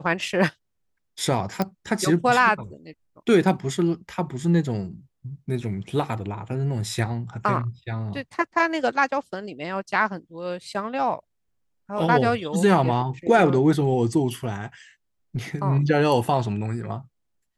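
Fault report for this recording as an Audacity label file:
1.620000	1.620000	pop -11 dBFS

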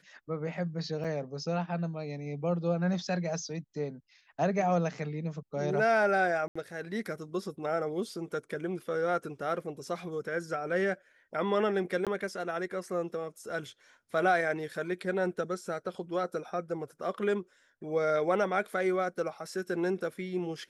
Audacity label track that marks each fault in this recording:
1.040000	1.050000	gap 6.2 ms
6.480000	6.550000	gap 75 ms
12.050000	12.070000	gap 17 ms

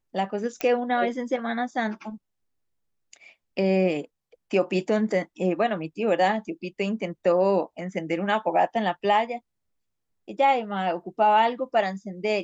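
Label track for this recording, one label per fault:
0.610000	0.610000	pop -12 dBFS

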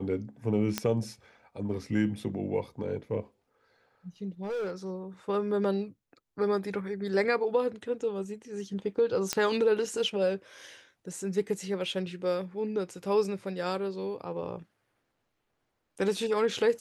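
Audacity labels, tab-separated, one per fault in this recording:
0.780000	0.780000	pop -11 dBFS
4.430000	4.910000	clipped -29.5 dBFS
9.330000	9.330000	pop -11 dBFS

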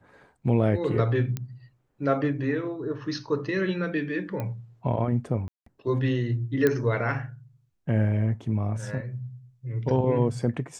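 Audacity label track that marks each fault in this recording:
1.370000	1.370000	pop -17 dBFS
4.400000	4.400000	pop -19 dBFS
5.480000	5.660000	gap 0.184 s
6.670000	6.670000	pop -10 dBFS

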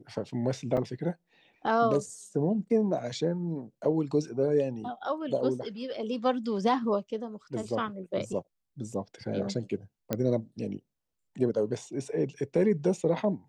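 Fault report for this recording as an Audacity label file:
0.770000	0.770000	gap 4.3 ms
10.130000	10.130000	pop -14 dBFS

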